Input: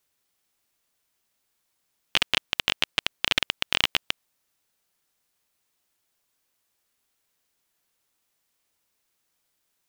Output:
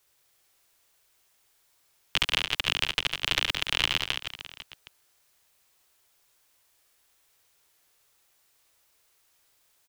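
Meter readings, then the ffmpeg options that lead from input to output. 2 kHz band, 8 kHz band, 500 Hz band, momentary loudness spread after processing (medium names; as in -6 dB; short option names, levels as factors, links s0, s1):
-1.0 dB, -0.5 dB, -2.0 dB, 14 LU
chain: -filter_complex "[0:a]equalizer=f=220:t=o:w=0.66:g=-12,acrossover=split=400[s0][s1];[s0]asoftclip=type=hard:threshold=0.0126[s2];[s1]alimiter=limit=0.237:level=0:latency=1:release=35[s3];[s2][s3]amix=inputs=2:normalize=0,aecho=1:1:70|168|305.2|497.3|766.2:0.631|0.398|0.251|0.158|0.1,volume=2"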